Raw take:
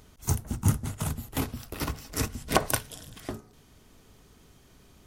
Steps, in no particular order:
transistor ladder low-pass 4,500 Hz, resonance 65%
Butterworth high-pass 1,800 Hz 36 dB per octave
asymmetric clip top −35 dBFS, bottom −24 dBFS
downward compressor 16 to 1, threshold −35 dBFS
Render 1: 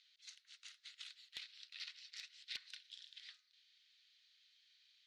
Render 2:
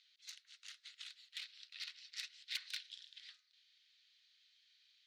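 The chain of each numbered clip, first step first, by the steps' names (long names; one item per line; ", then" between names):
Butterworth high-pass, then downward compressor, then transistor ladder low-pass, then asymmetric clip
transistor ladder low-pass, then asymmetric clip, then Butterworth high-pass, then downward compressor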